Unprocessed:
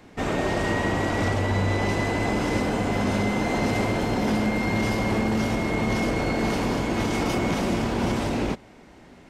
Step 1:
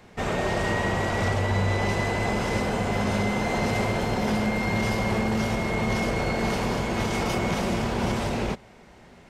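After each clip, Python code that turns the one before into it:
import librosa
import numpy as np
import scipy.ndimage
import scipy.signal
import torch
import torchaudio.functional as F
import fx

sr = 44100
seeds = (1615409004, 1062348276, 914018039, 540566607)

y = fx.peak_eq(x, sr, hz=290.0, db=-12.5, octaves=0.28)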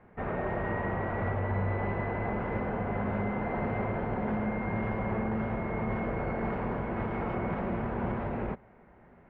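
y = scipy.signal.sosfilt(scipy.signal.butter(4, 1900.0, 'lowpass', fs=sr, output='sos'), x)
y = F.gain(torch.from_numpy(y), -6.0).numpy()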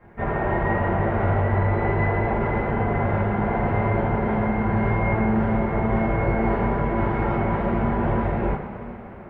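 y = fx.rev_double_slope(x, sr, seeds[0], early_s=0.38, late_s=4.8, knee_db=-18, drr_db=-8.0)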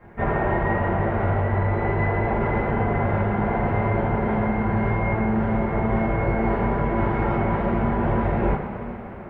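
y = fx.rider(x, sr, range_db=3, speed_s=0.5)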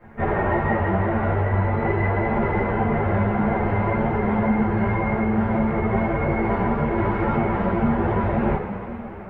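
y = fx.ensemble(x, sr)
y = F.gain(torch.from_numpy(y), 4.0).numpy()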